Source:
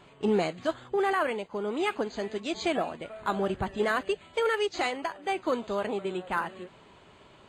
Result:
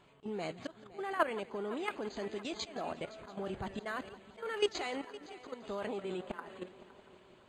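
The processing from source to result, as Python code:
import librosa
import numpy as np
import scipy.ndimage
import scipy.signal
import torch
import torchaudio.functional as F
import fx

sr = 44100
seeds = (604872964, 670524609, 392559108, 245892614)

y = fx.auto_swell(x, sr, attack_ms=279.0)
y = fx.level_steps(y, sr, step_db=13)
y = fx.echo_heads(y, sr, ms=171, heads='first and third', feedback_pct=60, wet_db=-19.0)
y = F.gain(torch.from_numpy(y), 1.0).numpy()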